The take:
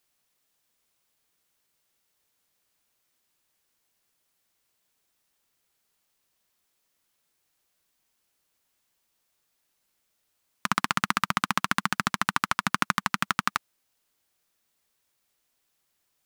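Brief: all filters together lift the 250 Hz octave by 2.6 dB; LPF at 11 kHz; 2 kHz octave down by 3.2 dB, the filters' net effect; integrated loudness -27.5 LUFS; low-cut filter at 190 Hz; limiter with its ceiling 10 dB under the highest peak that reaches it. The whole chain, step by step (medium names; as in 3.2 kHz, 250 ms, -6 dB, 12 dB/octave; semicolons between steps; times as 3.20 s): high-pass 190 Hz; low-pass 11 kHz; peaking EQ 250 Hz +6 dB; peaking EQ 2 kHz -4.5 dB; trim +9 dB; peak limiter -3.5 dBFS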